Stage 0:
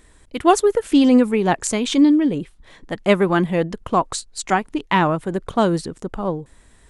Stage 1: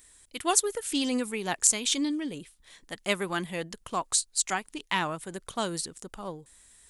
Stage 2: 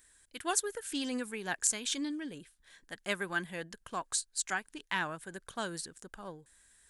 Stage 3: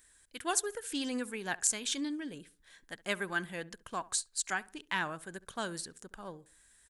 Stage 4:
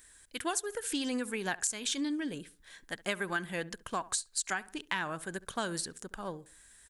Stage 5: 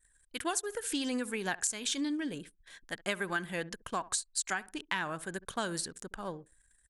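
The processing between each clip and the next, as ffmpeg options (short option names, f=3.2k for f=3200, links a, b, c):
-af "crystalizer=i=9.5:c=0,volume=-16.5dB"
-af "equalizer=f=1.6k:t=o:w=0.26:g=11.5,volume=-7.5dB"
-filter_complex "[0:a]asplit=2[a][b];[b]adelay=68,lowpass=f=1.4k:p=1,volume=-19dB,asplit=2[c][d];[d]adelay=68,lowpass=f=1.4k:p=1,volume=0.4,asplit=2[e][f];[f]adelay=68,lowpass=f=1.4k:p=1,volume=0.4[g];[a][c][e][g]amix=inputs=4:normalize=0"
-af "acompressor=threshold=-35dB:ratio=6,volume=5.5dB"
-af "anlmdn=0.000398"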